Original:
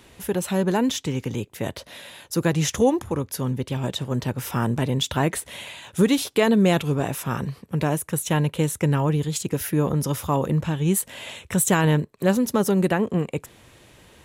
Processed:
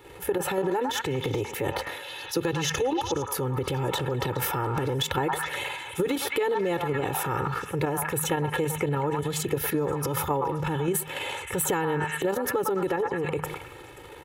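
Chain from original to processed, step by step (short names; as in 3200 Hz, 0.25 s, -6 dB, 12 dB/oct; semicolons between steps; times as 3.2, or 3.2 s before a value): bell 6300 Hz -12 dB 2.3 oct; comb 2.3 ms, depth 95%; de-hum 77.64 Hz, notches 3; level quantiser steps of 10 dB; delay with a stepping band-pass 0.105 s, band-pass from 1100 Hz, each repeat 0.7 oct, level -4 dB; spectral gain 2.04–3.27, 2500–6900 Hz +7 dB; transient shaper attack -3 dB, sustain +8 dB; low shelf 110 Hz -10.5 dB; compressor 12:1, threshold -31 dBFS, peak gain reduction 14 dB; gain +8 dB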